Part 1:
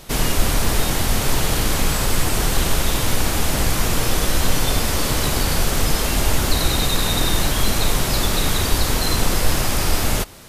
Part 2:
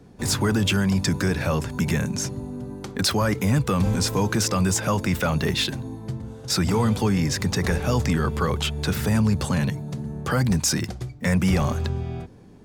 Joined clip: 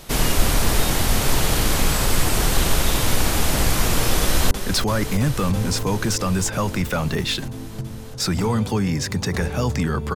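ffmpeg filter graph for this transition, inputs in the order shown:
ffmpeg -i cue0.wav -i cue1.wav -filter_complex "[0:a]apad=whole_dur=10.15,atrim=end=10.15,atrim=end=4.512[link_01];[1:a]atrim=start=2.808:end=8.45[link_02];[link_01][link_02]acrossfade=duration=0.004:curve1=hsin:curve2=hsin,asplit=2[link_03][link_04];[link_04]afade=type=in:start_time=4.21:duration=0.01,afade=type=out:start_time=4.51:duration=0.01,aecho=0:1:330|660|990|1320|1650|1980|2310|2640|2970|3300|3630|3960:0.354813|0.301591|0.256353|0.2179|0.185215|0.157433|0.133818|0.113745|0.0966833|0.0821808|0.0698537|0.0593756[link_05];[link_03][link_05]amix=inputs=2:normalize=0" out.wav

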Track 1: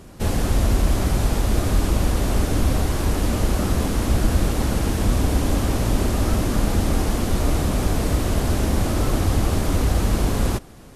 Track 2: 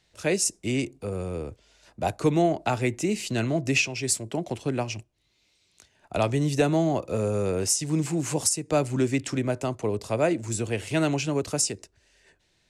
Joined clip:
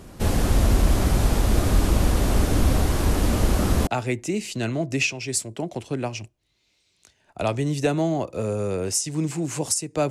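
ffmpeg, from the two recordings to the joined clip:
ffmpeg -i cue0.wav -i cue1.wav -filter_complex "[0:a]apad=whole_dur=10.1,atrim=end=10.1,atrim=end=3.872[link_01];[1:a]atrim=start=2.618:end=8.85[link_02];[link_01][link_02]acrossfade=duration=0.004:curve1=hsin:curve2=hsin" out.wav

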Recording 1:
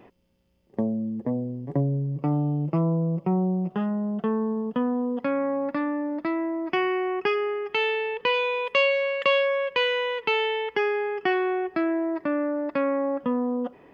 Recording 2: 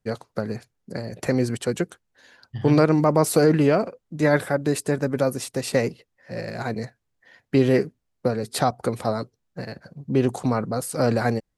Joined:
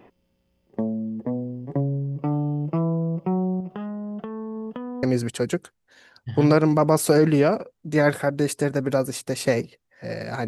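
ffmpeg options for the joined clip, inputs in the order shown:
ffmpeg -i cue0.wav -i cue1.wav -filter_complex "[0:a]asettb=1/sr,asplit=3[link_01][link_02][link_03];[link_01]atrim=end=3.604[link_04];[link_02]atrim=start=3.6:end=5.03,asetpts=PTS-STARTPTS,afade=type=in:duration=0.004:curve=qsin,afade=type=out:start_time=1.426:duration=0.004:curve=qsin,acompressor=threshold=-29dB:ratio=6:attack=3.2:release=140:knee=1:detection=peak[link_05];[link_03]atrim=start=5.026[link_06];[link_04][link_05]acrossfade=duration=0.004:curve1=hsin:curve2=qsin[link_07];[link_07][link_06]acrossfade=duration=0.004:curve1=qsin:curve2=hsin,apad=whole_dur=10.47,atrim=end=10.47,atrim=end=5.032[link_08];[1:a]atrim=start=1.298:end=6.74[link_09];[link_08][link_09]acrossfade=duration=0.004:curve1=hsin:curve2=hsin" out.wav

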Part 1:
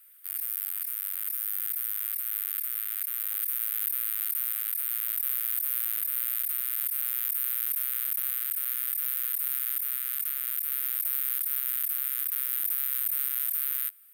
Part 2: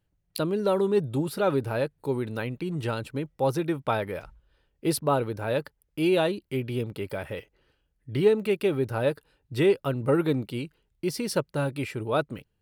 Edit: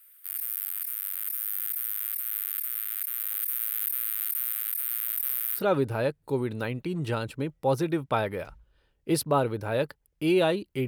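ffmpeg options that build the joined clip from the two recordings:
ffmpeg -i cue0.wav -i cue1.wav -filter_complex "[0:a]asettb=1/sr,asplit=3[link_01][link_02][link_03];[link_01]atrim=end=4.894[link_04];[link_02]atrim=start=4.89:end=5.62,asetpts=PTS-STARTPTS,afade=type=in:duration=0.004:curve=qsin,afade=type=out:start_time=0.726:duration=0.004:curve=qsin,asoftclip=type=hard:threshold=-15dB[link_05];[link_03]atrim=start=5.616[link_06];[link_04][link_05]acrossfade=duration=0.004:curve1=hsin:curve2=qsin[link_07];[link_07][link_06]acrossfade=duration=0.004:curve1=qsin:curve2=hsin,apad=whole_dur=10.87,atrim=end=10.87,atrim=end=5.62,asetpts=PTS-STARTPTS[link_08];[1:a]atrim=start=1.3:end=6.63,asetpts=PTS-STARTPTS[link_09];[link_08][link_09]acrossfade=duration=0.08:curve1=tri:curve2=tri" out.wav

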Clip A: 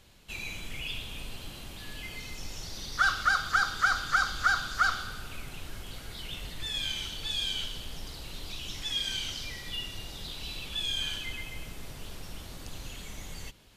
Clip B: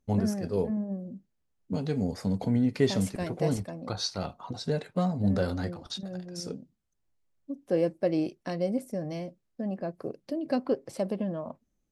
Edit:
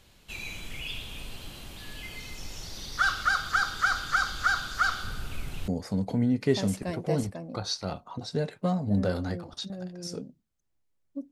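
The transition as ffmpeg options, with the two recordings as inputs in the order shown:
ffmpeg -i cue0.wav -i cue1.wav -filter_complex "[0:a]asettb=1/sr,asplit=3[link_01][link_02][link_03];[link_01]atrim=end=5.034[link_04];[link_02]atrim=start=5.03:end=5.68,asetpts=PTS-STARTPTS,afade=type=in:duration=0.004:curve=qsin,afade=type=out:start_time=0.646:duration=0.004:curve=qsin,lowshelf=frequency=260:gain=7.5[link_05];[link_03]atrim=start=5.676[link_06];[link_04][link_05]acrossfade=duration=0.004:curve1=hsin:curve2=qsin[link_07];[link_07][link_06]acrossfade=duration=0.004:curve1=qsin:curve2=hsin,apad=whole_dur=11.31,atrim=end=11.31,atrim=end=5.682[link_08];[1:a]atrim=start=2.008:end=7.64[link_09];[link_08][link_09]acrossfade=duration=0.004:curve1=hsin:curve2=hsin" out.wav

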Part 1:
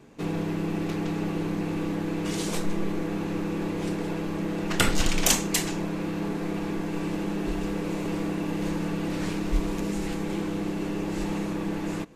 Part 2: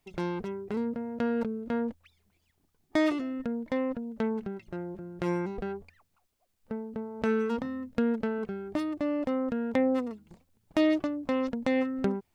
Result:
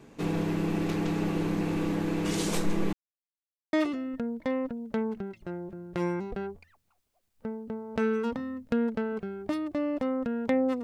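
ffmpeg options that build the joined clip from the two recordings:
ffmpeg -i cue0.wav -i cue1.wav -filter_complex "[0:a]apad=whole_dur=10.83,atrim=end=10.83,asplit=2[link_01][link_02];[link_01]atrim=end=2.93,asetpts=PTS-STARTPTS,afade=type=out:start_time=2.926:duration=0.004:curve=hsin[link_03];[link_02]atrim=start=2.93:end=3.73,asetpts=PTS-STARTPTS,volume=0[link_04];[1:a]atrim=start=2.99:end=10.09,asetpts=PTS-STARTPTS,afade=type=in:duration=0.004:curve=hsin[link_05];[link_03][link_04][link_05]concat=n=3:v=0:a=1" out.wav

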